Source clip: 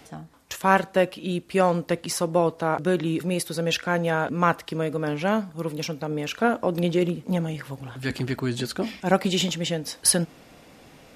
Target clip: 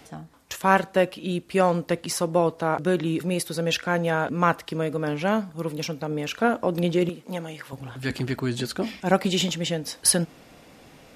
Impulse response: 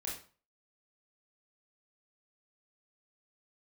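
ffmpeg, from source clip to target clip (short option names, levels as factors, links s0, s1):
-filter_complex "[0:a]asettb=1/sr,asplit=3[s0][s1][s2];[s0]atrim=end=7.094[s3];[s1]atrim=start=7.09:end=7.73,asetpts=PTS-STARTPTS,afade=t=in:d=0.004:c=qsin,afade=t=out:st=0.636:d=0.004:c=qsin,highpass=f=510:p=1[s4];[s2]atrim=start=7.726[s5];[s3][s4]acrossfade=d=0.004:c1=hsin:c2=qsin[s6];[s6][s5]acrossfade=d=0.004:c1=qsin:c2=hsin"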